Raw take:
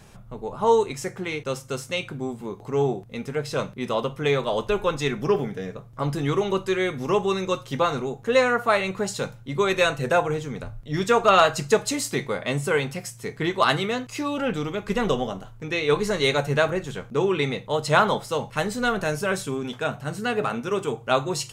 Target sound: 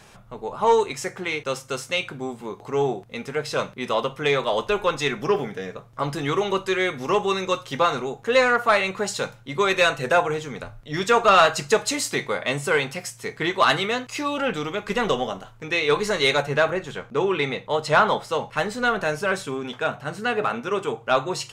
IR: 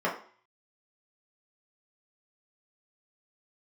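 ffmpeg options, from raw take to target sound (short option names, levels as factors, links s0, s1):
-filter_complex "[0:a]asetnsamples=n=441:p=0,asendcmd='16.42 lowpass f 2800',asplit=2[s0][s1];[s1]highpass=f=720:p=1,volume=2.82,asoftclip=type=tanh:threshold=0.473[s2];[s0][s2]amix=inputs=2:normalize=0,lowpass=f=6400:p=1,volume=0.501"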